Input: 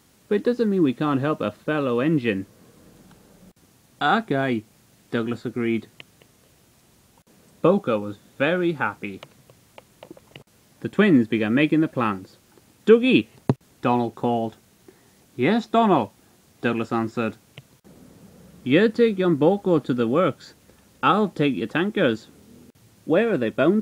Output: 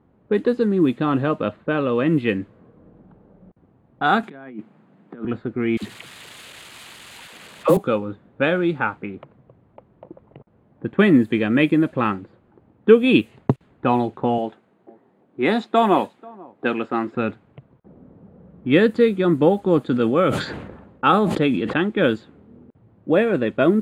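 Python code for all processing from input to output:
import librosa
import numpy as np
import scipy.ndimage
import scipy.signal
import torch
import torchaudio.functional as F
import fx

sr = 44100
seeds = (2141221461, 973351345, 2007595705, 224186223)

y = fx.chain(x, sr, fx.peak_eq(hz=480.0, db=-6.0, octaves=2.1),
    fx.over_compress(threshold_db=-33.0, ratio=-0.5),
    fx.steep_highpass(hz=160.0, slope=36), at=(4.23, 5.25))
y = fx.chain(y, sr, fx.crossing_spikes(level_db=-19.0),
    fx.dispersion(late='lows', ms=61.0, hz=520.0), at=(5.77, 7.77))
y = fx.chain(y, sr, fx.highpass(hz=230.0, slope=12),
    fx.high_shelf(hz=5000.0, db=6.0),
    fx.echo_single(ms=488, db=-23.5), at=(14.38, 17.15))
y = fx.chain(y, sr, fx.highpass(hz=47.0, slope=12),
    fx.low_shelf(hz=170.0, db=-2.5),
    fx.sustainer(db_per_s=46.0), at=(19.82, 21.76))
y = fx.env_lowpass(y, sr, base_hz=860.0, full_db=-14.5)
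y = fx.peak_eq(y, sr, hz=5600.0, db=-12.5, octaves=0.44)
y = F.gain(torch.from_numpy(y), 2.0).numpy()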